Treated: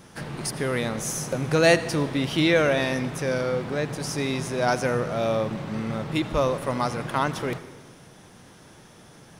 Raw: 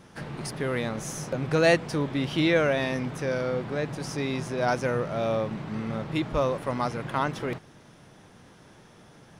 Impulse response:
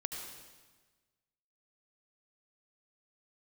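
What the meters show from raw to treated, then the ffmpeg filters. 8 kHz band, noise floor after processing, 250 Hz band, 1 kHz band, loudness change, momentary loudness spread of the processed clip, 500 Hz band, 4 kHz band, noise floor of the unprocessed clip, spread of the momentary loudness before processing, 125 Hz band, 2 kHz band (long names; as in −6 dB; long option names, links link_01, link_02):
+7.5 dB, −50 dBFS, +2.5 dB, +2.5 dB, +2.5 dB, 10 LU, +2.5 dB, +4.5 dB, −53 dBFS, 10 LU, +2.0 dB, +3.0 dB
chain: -filter_complex "[0:a]highshelf=frequency=6200:gain=9,asplit=2[link_01][link_02];[1:a]atrim=start_sample=2205[link_03];[link_02][link_03]afir=irnorm=-1:irlink=0,volume=-9dB[link_04];[link_01][link_04]amix=inputs=2:normalize=0"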